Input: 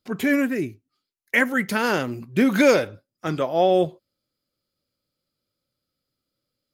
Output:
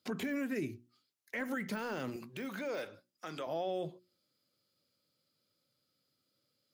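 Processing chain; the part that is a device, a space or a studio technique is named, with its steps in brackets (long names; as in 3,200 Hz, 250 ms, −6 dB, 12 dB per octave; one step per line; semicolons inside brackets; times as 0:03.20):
broadcast voice chain (high-pass filter 100 Hz 24 dB per octave; de-essing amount 85%; downward compressor 5 to 1, threshold −30 dBFS, peak gain reduction 14.5 dB; parametric band 4,700 Hz +3 dB 1.8 octaves; brickwall limiter −28 dBFS, peak gain reduction 11.5 dB)
mains-hum notches 60/120/180/240/300/360 Hz
0:02.16–0:03.47: high-pass filter 520 Hz 6 dB per octave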